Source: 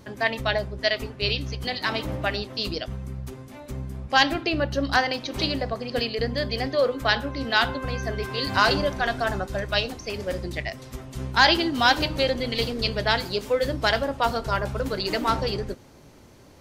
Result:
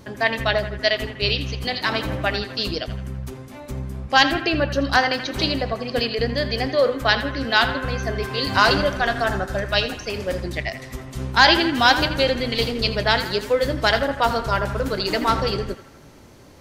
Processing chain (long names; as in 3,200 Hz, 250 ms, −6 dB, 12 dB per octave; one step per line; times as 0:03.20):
feedback echo with a band-pass in the loop 82 ms, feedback 65%, band-pass 1,600 Hz, level −10 dB
level +3.5 dB